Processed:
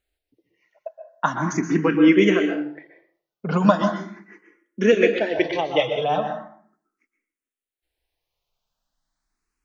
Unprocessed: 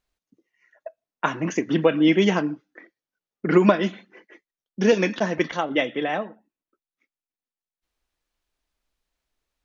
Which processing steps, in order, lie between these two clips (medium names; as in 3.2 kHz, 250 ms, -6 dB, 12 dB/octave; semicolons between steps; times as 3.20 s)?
5.73–6.20 s: comb 6.7 ms, depth 59%; plate-style reverb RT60 0.58 s, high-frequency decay 0.65×, pre-delay 110 ms, DRR 5.5 dB; barber-pole phaser +0.39 Hz; trim +3 dB